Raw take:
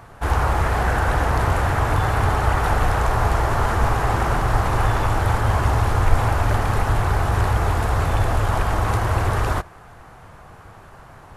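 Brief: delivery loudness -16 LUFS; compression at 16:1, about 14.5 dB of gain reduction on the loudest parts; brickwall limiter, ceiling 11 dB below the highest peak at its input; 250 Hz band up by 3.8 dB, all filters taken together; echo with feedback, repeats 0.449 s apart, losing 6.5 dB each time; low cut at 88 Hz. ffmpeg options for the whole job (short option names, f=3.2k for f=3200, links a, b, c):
-af "highpass=88,equalizer=f=250:t=o:g=5.5,acompressor=threshold=-31dB:ratio=16,alimiter=level_in=8dB:limit=-24dB:level=0:latency=1,volume=-8dB,aecho=1:1:449|898|1347|1796|2245|2694:0.473|0.222|0.105|0.0491|0.0231|0.0109,volume=24dB"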